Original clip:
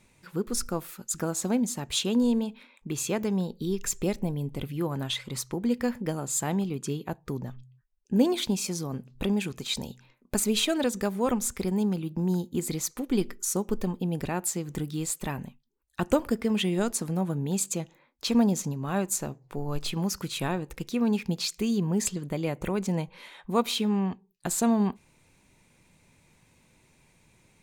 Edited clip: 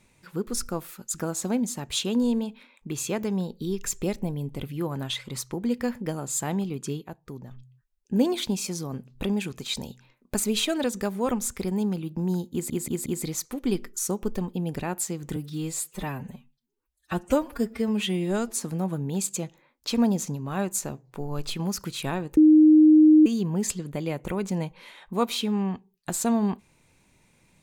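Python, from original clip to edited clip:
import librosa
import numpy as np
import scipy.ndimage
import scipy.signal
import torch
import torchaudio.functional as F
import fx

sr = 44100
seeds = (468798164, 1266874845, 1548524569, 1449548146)

y = fx.edit(x, sr, fx.clip_gain(start_s=7.01, length_s=0.5, db=-6.5),
    fx.stutter(start_s=12.52, slice_s=0.18, count=4),
    fx.stretch_span(start_s=14.82, length_s=2.18, factor=1.5),
    fx.bleep(start_s=20.74, length_s=0.89, hz=309.0, db=-11.0), tone=tone)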